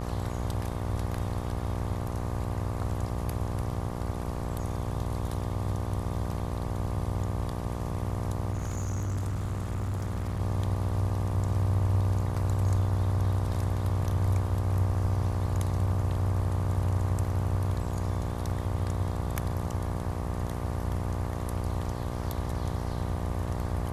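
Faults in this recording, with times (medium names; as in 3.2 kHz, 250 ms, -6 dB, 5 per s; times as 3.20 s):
buzz 60 Hz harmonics 20 -34 dBFS
8.52–10.41 s: clipped -27.5 dBFS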